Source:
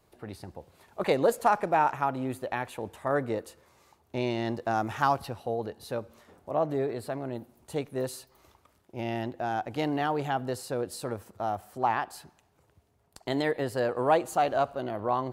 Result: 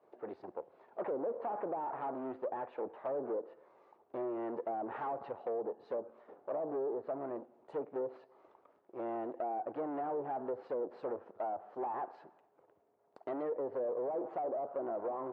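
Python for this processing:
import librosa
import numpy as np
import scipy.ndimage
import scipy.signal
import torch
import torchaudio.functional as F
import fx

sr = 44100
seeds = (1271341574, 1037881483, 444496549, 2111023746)

p1 = fx.tube_stage(x, sr, drive_db=37.0, bias=0.75)
p2 = fx.level_steps(p1, sr, step_db=12)
p3 = p1 + (p2 * 10.0 ** (0.5 / 20.0))
p4 = fx.ladder_bandpass(p3, sr, hz=600.0, resonance_pct=20)
p5 = fx.env_lowpass_down(p4, sr, base_hz=730.0, full_db=-45.0)
y = p5 * 10.0 ** (13.0 / 20.0)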